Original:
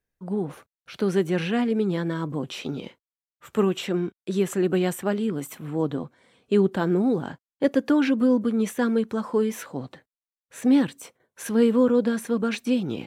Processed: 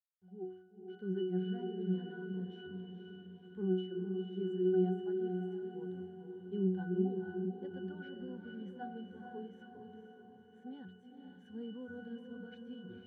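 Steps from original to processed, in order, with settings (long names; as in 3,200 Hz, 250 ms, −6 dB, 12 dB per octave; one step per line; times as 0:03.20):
noise reduction from a noise print of the clip's start 16 dB
bit reduction 9 bits
resonances in every octave F#, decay 0.54 s
feedback delay with all-pass diffusion 487 ms, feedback 55%, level −5 dB
level +1 dB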